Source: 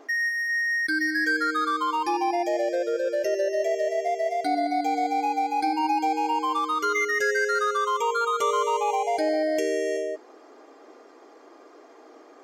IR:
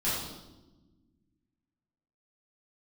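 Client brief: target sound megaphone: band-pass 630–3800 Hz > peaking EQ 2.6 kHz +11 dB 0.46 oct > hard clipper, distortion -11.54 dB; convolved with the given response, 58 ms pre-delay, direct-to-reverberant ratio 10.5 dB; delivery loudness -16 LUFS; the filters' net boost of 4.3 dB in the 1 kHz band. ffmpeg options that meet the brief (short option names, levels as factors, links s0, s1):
-filter_complex "[0:a]equalizer=f=1000:t=o:g=6.5,asplit=2[s0][s1];[1:a]atrim=start_sample=2205,adelay=58[s2];[s1][s2]afir=irnorm=-1:irlink=0,volume=0.112[s3];[s0][s3]amix=inputs=2:normalize=0,highpass=630,lowpass=3800,equalizer=f=2600:t=o:w=0.46:g=11,asoftclip=type=hard:threshold=0.0944,volume=2.37"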